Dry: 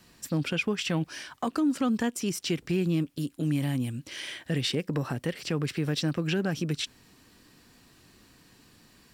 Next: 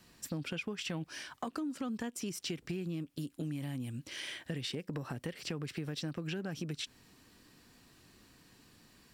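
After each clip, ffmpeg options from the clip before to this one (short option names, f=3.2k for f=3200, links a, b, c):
-af "acompressor=threshold=-31dB:ratio=6,volume=-4dB"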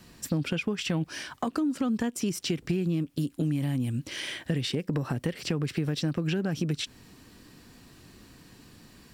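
-af "lowshelf=f=470:g=5,volume=6.5dB"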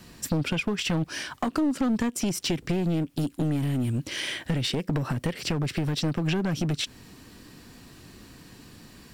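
-af "aeval=exprs='clip(val(0),-1,0.0447)':c=same,volume=4dB"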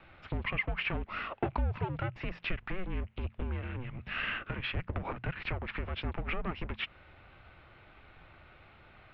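-af "aeval=exprs='if(lt(val(0),0),0.708*val(0),val(0))':c=same,bandreject=f=50:t=h:w=6,bandreject=f=100:t=h:w=6,bandreject=f=150:t=h:w=6,bandreject=f=200:t=h:w=6,bandreject=f=250:t=h:w=6,highpass=f=320:t=q:w=0.5412,highpass=f=320:t=q:w=1.307,lowpass=f=3.2k:t=q:w=0.5176,lowpass=f=3.2k:t=q:w=0.7071,lowpass=f=3.2k:t=q:w=1.932,afreqshift=-370"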